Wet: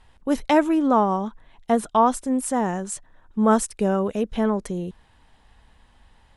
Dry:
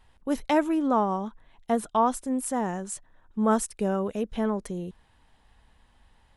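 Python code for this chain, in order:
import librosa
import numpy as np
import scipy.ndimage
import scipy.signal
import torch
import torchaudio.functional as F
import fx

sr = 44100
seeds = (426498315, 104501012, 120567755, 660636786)

y = scipy.signal.sosfilt(scipy.signal.butter(2, 11000.0, 'lowpass', fs=sr, output='sos'), x)
y = y * librosa.db_to_amplitude(5.0)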